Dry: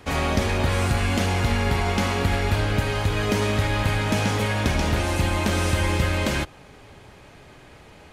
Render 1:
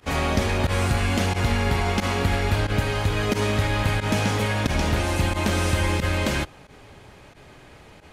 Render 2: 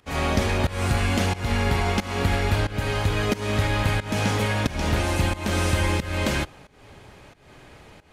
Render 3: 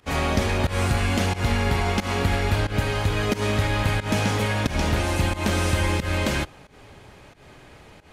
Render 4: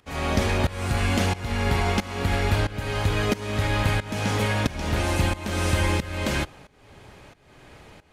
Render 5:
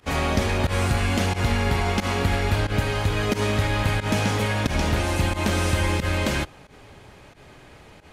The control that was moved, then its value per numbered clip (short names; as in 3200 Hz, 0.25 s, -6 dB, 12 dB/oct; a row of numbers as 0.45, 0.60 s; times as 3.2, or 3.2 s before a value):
pump, release: 62, 303, 156, 514, 95 ms